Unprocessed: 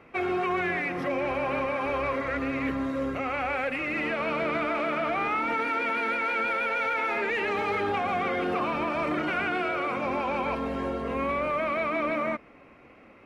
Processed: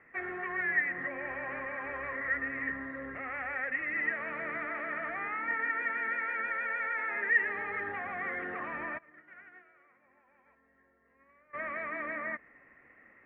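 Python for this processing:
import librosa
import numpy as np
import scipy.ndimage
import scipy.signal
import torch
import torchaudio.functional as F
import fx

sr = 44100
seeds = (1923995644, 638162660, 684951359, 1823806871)

y = 10.0 ** (-19.5 / 20.0) * np.tanh(x / 10.0 ** (-19.5 / 20.0))
y = fx.ladder_lowpass(y, sr, hz=1900.0, resonance_pct=90)
y = fx.upward_expand(y, sr, threshold_db=-40.0, expansion=2.5, at=(8.97, 11.53), fade=0.02)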